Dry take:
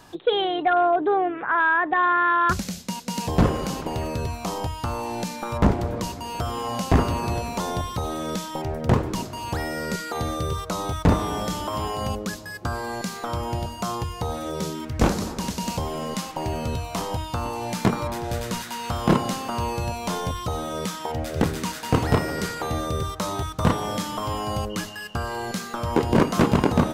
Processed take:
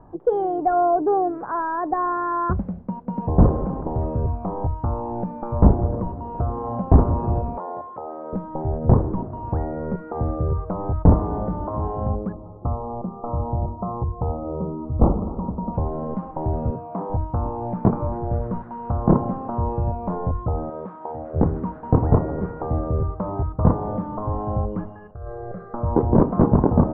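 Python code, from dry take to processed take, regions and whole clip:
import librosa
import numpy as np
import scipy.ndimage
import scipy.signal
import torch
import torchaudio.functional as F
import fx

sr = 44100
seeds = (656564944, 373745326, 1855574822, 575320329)

y = fx.chain(x, sr, fx.highpass(hz=550.0, slope=12),
    fx.high_shelf(hz=4100.0, db=-8.0), at=(7.57, 8.33))
y = fx.chain(y, sr, fx.brickwall_lowpass(high_hz=1400.0),
    fx.hum_notches(base_hz=50, count=9), at=(12.32, 15.74))
y = fx.chain(y, sr, fx.highpass(hz=160.0, slope=24),
    fx.air_absorb(metres=77.0), at=(16.7, 17.1))
y = fx.chain(y, sr, fx.cvsd(bps=32000),
    fx.highpass(hz=520.0, slope=6), at=(20.7, 21.34))
y = fx.chain(y, sr, fx.fixed_phaser(hz=920.0, stages=6),
    fx.resample_bad(factor=8, down='filtered', up='hold'),
    fx.over_compress(threshold_db=-35.0, ratio=-1.0), at=(25.11, 25.74))
y = scipy.signal.sosfilt(scipy.signal.butter(4, 1000.0, 'lowpass', fs=sr, output='sos'), y)
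y = fx.low_shelf(y, sr, hz=77.0, db=10.5)
y = y * librosa.db_to_amplitude(1.5)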